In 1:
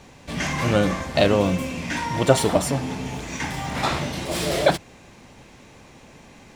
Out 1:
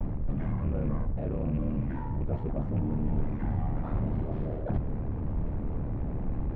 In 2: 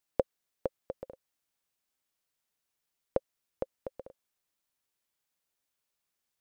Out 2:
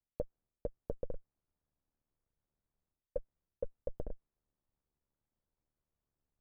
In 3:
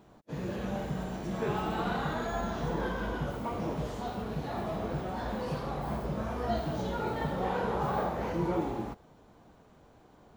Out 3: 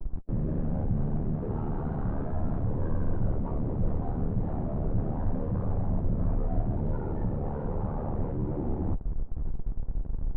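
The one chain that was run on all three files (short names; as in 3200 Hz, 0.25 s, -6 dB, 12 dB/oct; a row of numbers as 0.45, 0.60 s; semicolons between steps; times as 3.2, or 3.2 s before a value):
rattling part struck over -22 dBFS, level -14 dBFS; short-mantissa float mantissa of 2-bit; reverse; compressor 16:1, threshold -37 dBFS; reverse; ring modulator 37 Hz; vibrato 0.78 Hz 44 cents; in parallel at -3 dB: Schmitt trigger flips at -53 dBFS; on the sum: LPF 1500 Hz 12 dB/oct; tilt -4.5 dB/oct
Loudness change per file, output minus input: -9.5, -6.0, +2.0 LU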